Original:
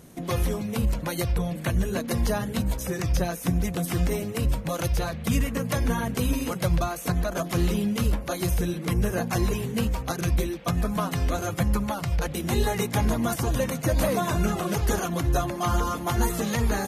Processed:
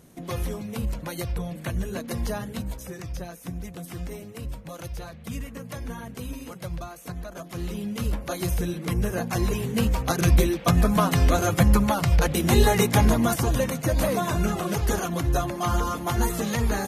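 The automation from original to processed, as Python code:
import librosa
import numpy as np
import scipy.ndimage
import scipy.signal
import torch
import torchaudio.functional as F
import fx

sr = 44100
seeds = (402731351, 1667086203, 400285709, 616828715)

y = fx.gain(x, sr, db=fx.line((2.41, -4.0), (3.15, -10.0), (7.49, -10.0), (8.25, -1.0), (9.32, -1.0), (10.3, 6.0), (12.86, 6.0), (13.84, 0.0)))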